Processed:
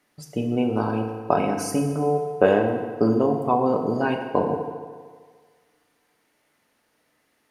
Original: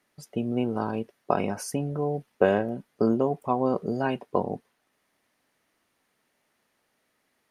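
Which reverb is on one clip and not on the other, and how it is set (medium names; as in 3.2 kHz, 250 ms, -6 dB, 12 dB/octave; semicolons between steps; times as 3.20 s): FDN reverb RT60 1.7 s, low-frequency decay 0.85×, high-frequency decay 0.75×, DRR 3 dB; trim +3 dB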